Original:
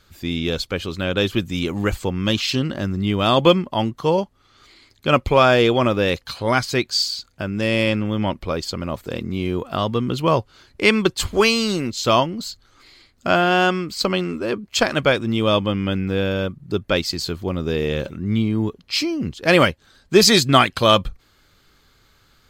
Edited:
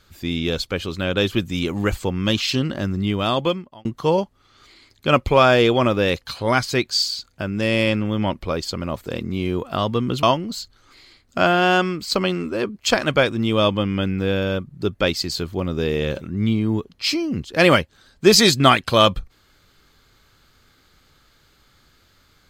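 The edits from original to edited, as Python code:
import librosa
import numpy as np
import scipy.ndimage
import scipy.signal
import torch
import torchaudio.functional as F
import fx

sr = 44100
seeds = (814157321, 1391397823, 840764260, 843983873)

y = fx.edit(x, sr, fx.fade_out_span(start_s=2.99, length_s=0.86),
    fx.cut(start_s=10.23, length_s=1.89), tone=tone)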